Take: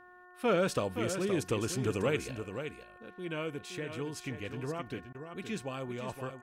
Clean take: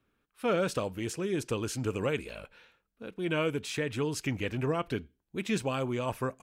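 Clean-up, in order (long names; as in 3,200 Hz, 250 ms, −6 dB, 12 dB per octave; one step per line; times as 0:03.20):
hum removal 360.1 Hz, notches 5
repair the gap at 0:05.13, 14 ms
echo removal 520 ms −8.5 dB
level 0 dB, from 0:02.31 +7.5 dB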